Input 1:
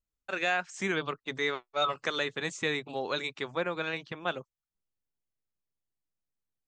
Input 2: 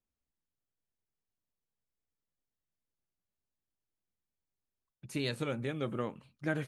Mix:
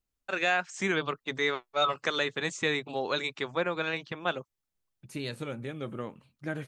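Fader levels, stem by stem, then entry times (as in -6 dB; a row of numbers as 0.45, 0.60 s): +2.0, -1.5 dB; 0.00, 0.00 s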